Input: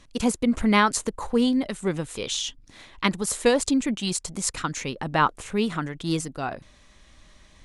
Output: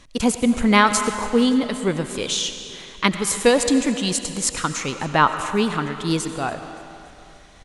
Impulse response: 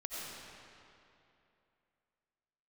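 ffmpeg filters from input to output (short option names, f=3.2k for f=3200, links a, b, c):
-filter_complex "[0:a]aecho=1:1:285|570|855|1140:0.0794|0.0413|0.0215|0.0112,asplit=2[a][b];[1:a]atrim=start_sample=2205,lowshelf=f=240:g=-11[c];[b][c]afir=irnorm=-1:irlink=0,volume=-6dB[d];[a][d]amix=inputs=2:normalize=0,volume=2.5dB"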